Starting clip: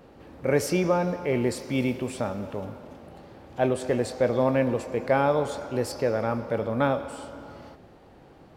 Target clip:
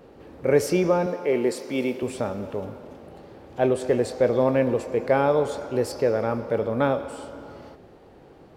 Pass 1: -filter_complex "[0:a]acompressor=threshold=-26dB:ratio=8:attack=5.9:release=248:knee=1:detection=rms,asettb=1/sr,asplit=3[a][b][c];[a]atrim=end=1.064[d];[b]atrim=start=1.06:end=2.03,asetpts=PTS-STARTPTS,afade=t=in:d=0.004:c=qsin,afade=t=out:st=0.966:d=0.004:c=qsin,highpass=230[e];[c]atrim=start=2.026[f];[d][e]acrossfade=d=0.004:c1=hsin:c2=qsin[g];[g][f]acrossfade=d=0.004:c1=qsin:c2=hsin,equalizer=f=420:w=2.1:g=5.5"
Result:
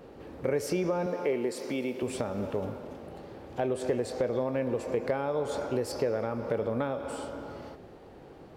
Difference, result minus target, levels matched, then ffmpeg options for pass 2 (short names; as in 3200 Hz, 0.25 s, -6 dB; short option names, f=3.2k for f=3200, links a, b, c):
compressor: peak gain reduction +11.5 dB
-filter_complex "[0:a]asettb=1/sr,asplit=3[a][b][c];[a]atrim=end=1.064[d];[b]atrim=start=1.06:end=2.03,asetpts=PTS-STARTPTS,afade=t=in:d=0.004:c=qsin,afade=t=out:st=0.966:d=0.004:c=qsin,highpass=230[e];[c]atrim=start=2.026[f];[d][e]acrossfade=d=0.004:c1=hsin:c2=qsin[g];[g][f]acrossfade=d=0.004:c1=qsin:c2=hsin,equalizer=f=420:w=2.1:g=5.5"